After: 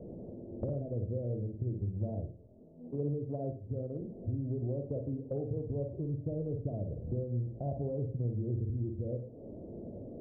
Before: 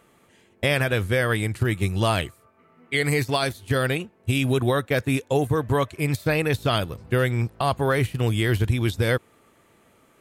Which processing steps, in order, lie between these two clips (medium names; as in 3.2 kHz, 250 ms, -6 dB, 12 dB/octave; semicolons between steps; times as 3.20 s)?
jump at every zero crossing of -38 dBFS; steep low-pass 610 Hz 48 dB/octave; peaking EQ 420 Hz -3.5 dB 0.77 oct; compression 5:1, threshold -37 dBFS, peak gain reduction 18.5 dB; reverberation, pre-delay 49 ms, DRR 4.5 dB; 1.81–4.01 s: three bands expanded up and down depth 100%; trim +1.5 dB